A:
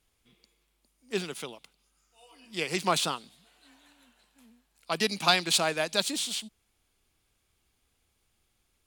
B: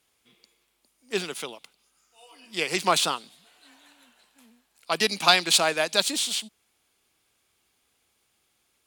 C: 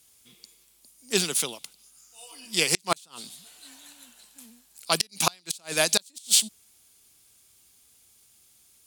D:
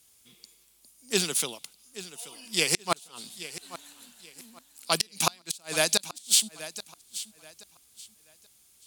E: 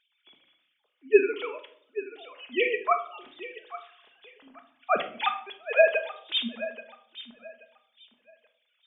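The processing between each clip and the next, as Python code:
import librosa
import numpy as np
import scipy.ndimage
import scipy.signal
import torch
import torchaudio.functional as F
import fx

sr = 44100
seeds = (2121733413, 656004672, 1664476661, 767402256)

y1 = fx.highpass(x, sr, hz=320.0, slope=6)
y1 = y1 * librosa.db_to_amplitude(5.0)
y2 = fx.bass_treble(y1, sr, bass_db=8, treble_db=15)
y2 = fx.gate_flip(y2, sr, shuts_db=-4.0, range_db=-36)
y3 = fx.echo_feedback(y2, sr, ms=830, feedback_pct=27, wet_db=-15)
y3 = y3 * librosa.db_to_amplitude(-1.5)
y4 = fx.sine_speech(y3, sr)
y4 = fx.room_shoebox(y4, sr, seeds[0], volume_m3=750.0, walls='furnished', distance_m=1.4)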